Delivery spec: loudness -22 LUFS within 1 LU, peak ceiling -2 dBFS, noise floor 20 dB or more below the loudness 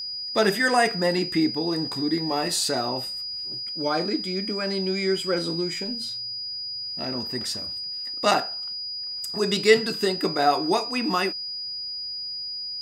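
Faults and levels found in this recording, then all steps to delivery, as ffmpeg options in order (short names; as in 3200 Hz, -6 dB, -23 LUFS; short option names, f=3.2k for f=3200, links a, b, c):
steady tone 4900 Hz; tone level -30 dBFS; loudness -25.0 LUFS; peak -4.0 dBFS; loudness target -22.0 LUFS
-> -af "bandreject=f=4.9k:w=30"
-af "volume=3dB,alimiter=limit=-2dB:level=0:latency=1"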